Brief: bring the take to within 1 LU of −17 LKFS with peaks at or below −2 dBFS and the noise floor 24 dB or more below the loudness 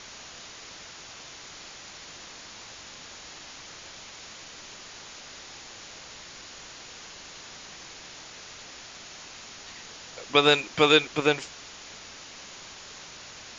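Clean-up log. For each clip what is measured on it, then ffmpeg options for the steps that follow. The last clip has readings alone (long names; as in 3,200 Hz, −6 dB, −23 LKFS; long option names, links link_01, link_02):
background noise floor −45 dBFS; target noise floor −46 dBFS; integrated loudness −22.0 LKFS; sample peak −5.0 dBFS; target loudness −17.0 LKFS
→ -af "afftdn=noise_reduction=6:noise_floor=-45"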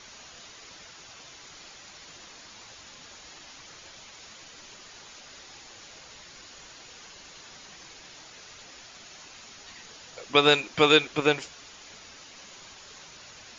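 background noise floor −49 dBFS; integrated loudness −22.0 LKFS; sample peak −5.0 dBFS; target loudness −17.0 LKFS
→ -af "volume=5dB,alimiter=limit=-2dB:level=0:latency=1"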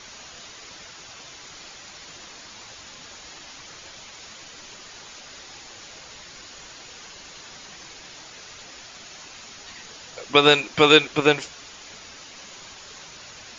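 integrated loudness −17.5 LKFS; sample peak −2.0 dBFS; background noise floor −44 dBFS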